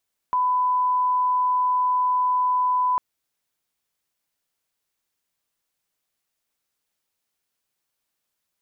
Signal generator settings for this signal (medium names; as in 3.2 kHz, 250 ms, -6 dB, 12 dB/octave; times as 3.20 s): line-up tone -18 dBFS 2.65 s